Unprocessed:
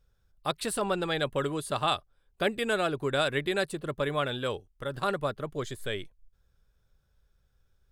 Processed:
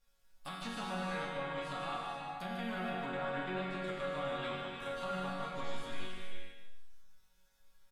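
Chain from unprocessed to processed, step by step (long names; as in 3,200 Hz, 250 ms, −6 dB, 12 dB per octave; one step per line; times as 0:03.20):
spectral envelope flattened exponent 0.6
treble cut that deepens with the level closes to 1,500 Hz, closed at −24.5 dBFS
parametric band 460 Hz −8.5 dB 0.84 octaves
resonators tuned to a chord F#3 major, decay 0.52 s
brickwall limiter −45.5 dBFS, peak gain reduction 9.5 dB
repeating echo 150 ms, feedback 22%, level −7 dB
reverb whose tail is shaped and stops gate 500 ms flat, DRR −0.5 dB
level +12.5 dB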